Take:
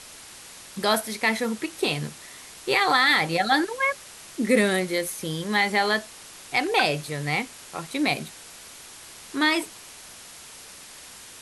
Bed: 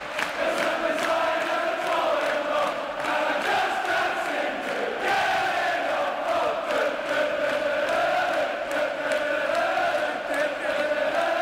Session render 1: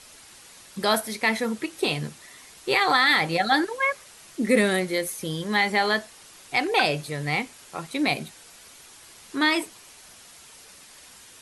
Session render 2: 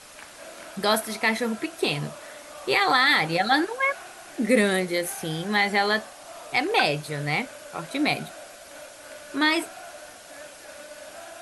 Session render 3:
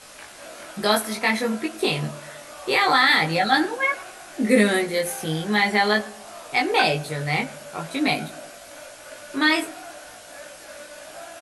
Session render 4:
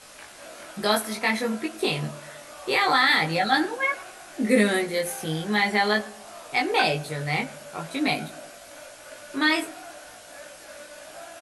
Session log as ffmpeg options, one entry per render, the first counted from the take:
-af "afftdn=nr=6:nf=-45"
-filter_complex "[1:a]volume=-18.5dB[a];[0:a][a]amix=inputs=2:normalize=0"
-filter_complex "[0:a]asplit=2[a][b];[b]adelay=19,volume=-2dB[c];[a][c]amix=inputs=2:normalize=0,asplit=2[d][e];[e]adelay=109,lowpass=f=1.1k:p=1,volume=-17dB,asplit=2[f][g];[g]adelay=109,lowpass=f=1.1k:p=1,volume=0.48,asplit=2[h][i];[i]adelay=109,lowpass=f=1.1k:p=1,volume=0.48,asplit=2[j][k];[k]adelay=109,lowpass=f=1.1k:p=1,volume=0.48[l];[d][f][h][j][l]amix=inputs=5:normalize=0"
-af "volume=-2.5dB"

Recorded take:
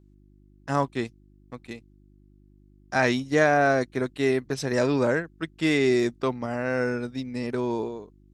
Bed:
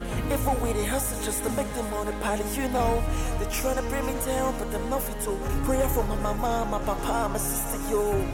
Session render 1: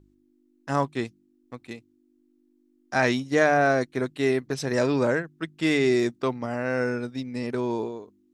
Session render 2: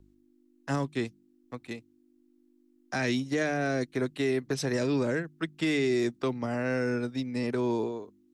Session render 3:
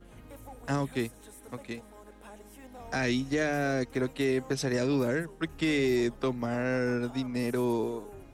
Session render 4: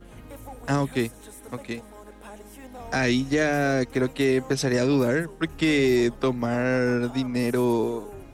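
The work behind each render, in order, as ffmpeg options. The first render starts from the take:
-af "bandreject=f=50:t=h:w=4,bandreject=f=100:t=h:w=4,bandreject=f=150:t=h:w=4,bandreject=f=200:t=h:w=4"
-filter_complex "[0:a]acrossover=split=370|400|1800[a][b][c][d];[c]acompressor=threshold=-35dB:ratio=6[e];[a][b][e][d]amix=inputs=4:normalize=0,alimiter=limit=-19dB:level=0:latency=1:release=122"
-filter_complex "[1:a]volume=-22dB[a];[0:a][a]amix=inputs=2:normalize=0"
-af "volume=6dB"

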